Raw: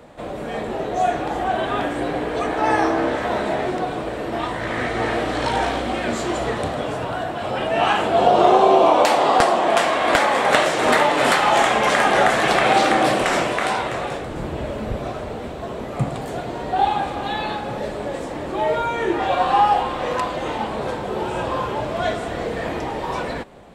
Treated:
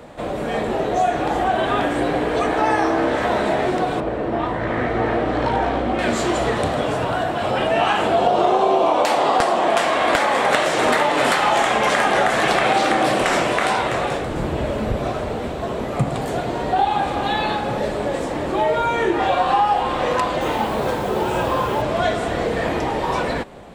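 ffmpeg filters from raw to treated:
-filter_complex "[0:a]asettb=1/sr,asplit=3[s0][s1][s2];[s0]atrim=end=4.004[s3];[s1]atrim=start=4:end=5.99,asetpts=PTS-STARTPTS,afade=t=in:d=0.004:c=qsin,afade=t=out:st=1.986:d=0.004:c=qsin,lowpass=f=1200:p=1[s4];[s2]atrim=start=5.986[s5];[s3][s4]acrossfade=d=0.004:c1=hsin:c2=qsin[s6];[s6][s5]acrossfade=d=0.004:c1=qsin:c2=hsin,asettb=1/sr,asplit=3[s7][s8][s9];[s7]atrim=end=20.414[s10];[s8]atrim=start=20.41:end=21.82,asetpts=PTS-STARTPTS,afade=t=in:d=0.004:c=qsin,afade=t=out:st=1.406:d=0.004:c=qsin,acrusher=bits=6:mix=0:aa=0.5[s11];[s9]atrim=start=21.816[s12];[s10][s11]acrossfade=d=0.004:c1=hsin:c2=qsin[s13];[s13][s12]acrossfade=d=0.004:c1=qsin:c2=hsin,acompressor=threshold=0.1:ratio=3,volume=1.68"

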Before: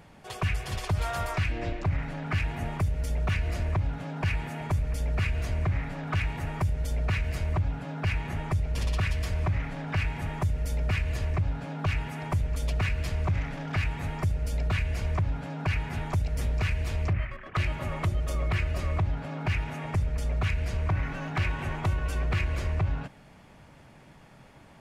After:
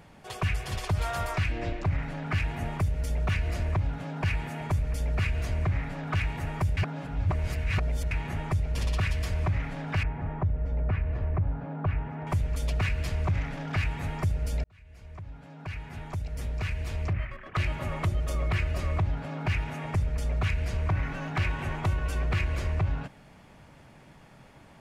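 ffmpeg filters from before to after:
-filter_complex "[0:a]asettb=1/sr,asplit=3[s0][s1][s2];[s0]atrim=end=10.034[s3];[s1]atrim=start=10.03:end=12.27,asetpts=PTS-STARTPTS,afade=t=in:d=0.004:c=qsin,afade=t=out:st=2.236:d=0.004:c=qsin,lowpass=1300[s4];[s2]atrim=start=12.266[s5];[s3][s4]acrossfade=d=0.004:c1=hsin:c2=qsin[s6];[s6][s5]acrossfade=d=0.004:c1=qsin:c2=hsin,asplit=4[s7][s8][s9][s10];[s7]atrim=end=6.772[s11];[s8]atrim=start=6.768:end=8.112,asetpts=PTS-STARTPTS,areverse[s12];[s9]atrim=start=8.108:end=14.64,asetpts=PTS-STARTPTS,afade=t=out:st=6.528:d=0.004:c=hsin[s13];[s10]atrim=start=14.64,asetpts=PTS-STARTPTS,afade=t=in:d=3.12[s14];[s11][s12]acrossfade=d=0.004:c1=hsin:c2=hsin[s15];[s13][s14]concat=n=2:v=0:a=1[s16];[s15][s16]acrossfade=d=0.004:c1=hsin:c2=hsin"

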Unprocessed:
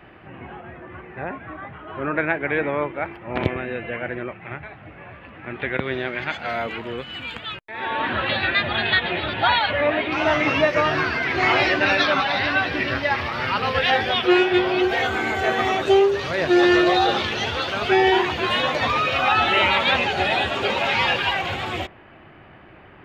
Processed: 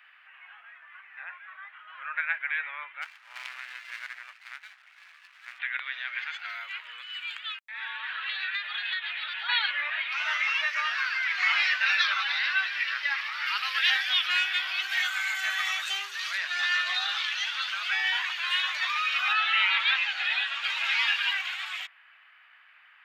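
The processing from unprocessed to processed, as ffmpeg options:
-filter_complex "[0:a]asplit=3[s0][s1][s2];[s0]afade=t=out:st=3.01:d=0.02[s3];[s1]aeval=exprs='max(val(0),0)':c=same,afade=t=in:st=3.01:d=0.02,afade=t=out:st=5.58:d=0.02[s4];[s2]afade=t=in:st=5.58:d=0.02[s5];[s3][s4][s5]amix=inputs=3:normalize=0,asplit=3[s6][s7][s8];[s6]afade=t=out:st=6.23:d=0.02[s9];[s7]acompressor=threshold=0.0708:ratio=6:attack=3.2:release=140:knee=1:detection=peak,afade=t=in:st=6.23:d=0.02,afade=t=out:st=9.48:d=0.02[s10];[s8]afade=t=in:st=9.48:d=0.02[s11];[s9][s10][s11]amix=inputs=3:normalize=0,asettb=1/sr,asplit=3[s12][s13][s14];[s12]atrim=end=13.464[s15];[s13]atrim=start=13.46:end=16.38,asetpts=PTS-STARTPTS,afade=t=in:d=0.004:c=qsin,afade=t=out:st=2.916:d=0.004:c=qsin,aemphasis=mode=production:type=cd[s16];[s14]atrim=start=16.376[s17];[s15][s16]acrossfade=d=0.004:c1=hsin:c2=qsin[s18];[s18][s17]acrossfade=d=0.004:c1=qsin:c2=hsin,asettb=1/sr,asplit=3[s19][s20][s21];[s19]atrim=end=19.334[s22];[s20]atrim=start=19.33:end=20.64,asetpts=PTS-STARTPTS,afade=t=in:d=0.004:c=qsin,afade=t=out:st=1.306:d=0.004:c=qsin,acrossover=split=5400[s23][s24];[s24]acompressor=threshold=0.00158:ratio=4:attack=1:release=60[s25];[s23][s25]amix=inputs=2:normalize=0[s26];[s21]atrim=start=20.636[s27];[s22][s26]acrossfade=d=0.004:c1=hsin:c2=qsin[s28];[s28][s27]acrossfade=d=0.004:c1=qsin:c2=hsin,highpass=f=1400:w=0.5412,highpass=f=1400:w=1.3066,volume=0.708"

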